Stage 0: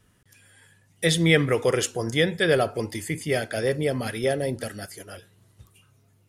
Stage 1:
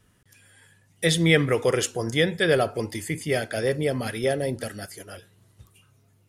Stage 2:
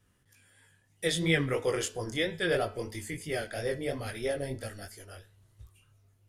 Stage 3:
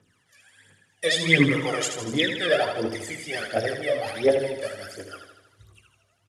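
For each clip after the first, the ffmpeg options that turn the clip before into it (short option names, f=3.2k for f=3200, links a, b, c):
-af anull
-af "asubboost=boost=8:cutoff=60,flanger=delay=18:depth=5.6:speed=3,bandreject=f=216.5:t=h:w=4,bandreject=f=433:t=h:w=4,bandreject=f=649.5:t=h:w=4,bandreject=f=866:t=h:w=4,bandreject=f=1.0825k:t=h:w=4,bandreject=f=1.299k:t=h:w=4,bandreject=f=1.5155k:t=h:w=4,bandreject=f=1.732k:t=h:w=4,bandreject=f=1.9485k:t=h:w=4,bandreject=f=2.165k:t=h:w=4,bandreject=f=2.3815k:t=h:w=4,bandreject=f=2.598k:t=h:w=4,bandreject=f=2.8145k:t=h:w=4,bandreject=f=3.031k:t=h:w=4,bandreject=f=3.2475k:t=h:w=4,bandreject=f=3.464k:t=h:w=4,bandreject=f=3.6805k:t=h:w=4,bandreject=f=3.897k:t=h:w=4,bandreject=f=4.1135k:t=h:w=4,bandreject=f=4.33k:t=h:w=4,bandreject=f=4.5465k:t=h:w=4,bandreject=f=4.763k:t=h:w=4,bandreject=f=4.9795k:t=h:w=4,bandreject=f=5.196k:t=h:w=4,bandreject=f=5.4125k:t=h:w=4,bandreject=f=5.629k:t=h:w=4,volume=-4dB"
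-af "aphaser=in_gain=1:out_gain=1:delay=1.8:decay=0.8:speed=1.4:type=triangular,highpass=220,lowpass=7.8k,aecho=1:1:79|158|237|316|395|474|553|632:0.422|0.253|0.152|0.0911|0.0547|0.0328|0.0197|0.0118,volume=3.5dB"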